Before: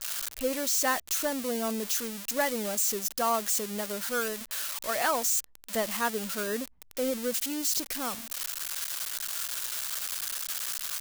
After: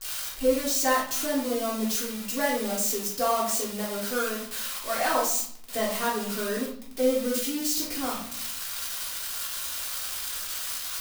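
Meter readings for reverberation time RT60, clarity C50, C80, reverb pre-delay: 0.60 s, 4.5 dB, 9.0 dB, 3 ms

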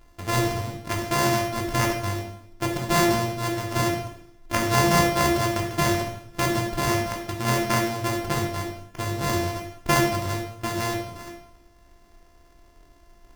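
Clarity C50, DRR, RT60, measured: 5.5 dB, 0.5 dB, 0.65 s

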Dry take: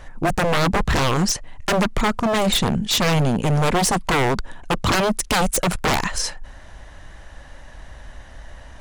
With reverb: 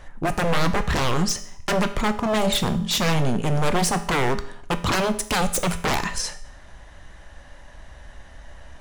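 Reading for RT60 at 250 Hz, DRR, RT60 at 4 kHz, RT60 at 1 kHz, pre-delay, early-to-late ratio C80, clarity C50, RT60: 0.65 s, 9.0 dB, 0.60 s, 0.65 s, 5 ms, 16.5 dB, 13.5 dB, 0.65 s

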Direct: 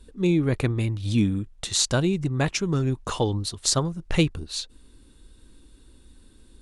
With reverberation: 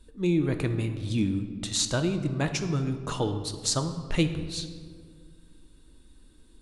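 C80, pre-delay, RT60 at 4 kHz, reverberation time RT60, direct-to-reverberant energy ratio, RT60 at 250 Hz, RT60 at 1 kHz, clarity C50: 11.0 dB, 3 ms, 1.0 s, 1.9 s, 7.0 dB, 2.7 s, 1.6 s, 9.5 dB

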